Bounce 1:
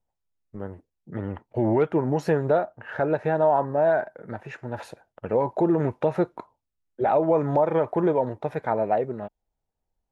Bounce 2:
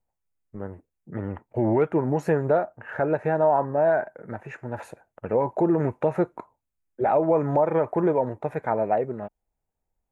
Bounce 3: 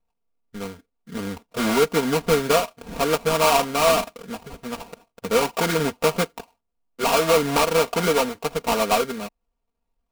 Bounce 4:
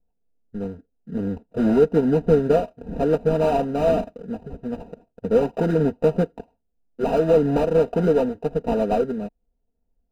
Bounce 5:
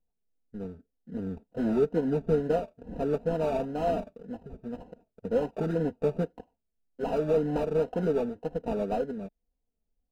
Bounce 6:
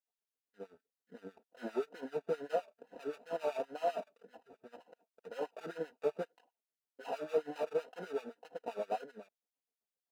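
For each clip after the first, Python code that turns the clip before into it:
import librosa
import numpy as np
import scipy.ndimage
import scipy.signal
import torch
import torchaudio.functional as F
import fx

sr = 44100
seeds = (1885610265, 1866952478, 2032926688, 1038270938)

y1 = fx.band_shelf(x, sr, hz=4100.0, db=-8.5, octaves=1.1)
y2 = fx.sample_hold(y1, sr, seeds[0], rate_hz=1800.0, jitter_pct=20)
y2 = y2 + 0.85 * np.pad(y2, (int(4.3 * sr / 1000.0), 0))[:len(y2)]
y3 = np.convolve(y2, np.full(40, 1.0 / 40))[:len(y2)]
y3 = F.gain(torch.from_numpy(y3), 5.5).numpy()
y4 = fx.wow_flutter(y3, sr, seeds[1], rate_hz=2.1, depth_cents=95.0)
y4 = F.gain(torch.from_numpy(y4), -8.5).numpy()
y5 = fx.filter_lfo_highpass(y4, sr, shape='sine', hz=7.7, low_hz=400.0, high_hz=2300.0, q=0.85)
y5 = F.gain(torch.from_numpy(y5), -4.0).numpy()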